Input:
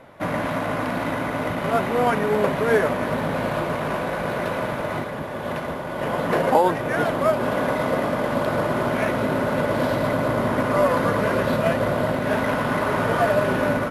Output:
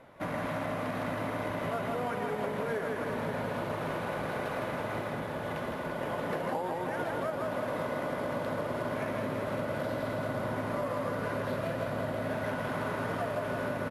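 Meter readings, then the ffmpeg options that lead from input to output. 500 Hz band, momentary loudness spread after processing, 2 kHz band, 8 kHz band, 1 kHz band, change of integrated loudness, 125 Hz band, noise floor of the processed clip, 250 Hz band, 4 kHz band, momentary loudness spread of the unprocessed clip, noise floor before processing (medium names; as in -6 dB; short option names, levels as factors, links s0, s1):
-11.5 dB, 2 LU, -11.0 dB, -11.0 dB, -11.5 dB, -11.5 dB, -10.0 dB, -36 dBFS, -11.5 dB, -11.0 dB, 7 LU, -30 dBFS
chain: -filter_complex "[0:a]asplit=2[s0][s1];[s1]aecho=0:1:160|336|529.6|742.6|976.8:0.631|0.398|0.251|0.158|0.1[s2];[s0][s2]amix=inputs=2:normalize=0,acompressor=threshold=0.0794:ratio=6,volume=0.398"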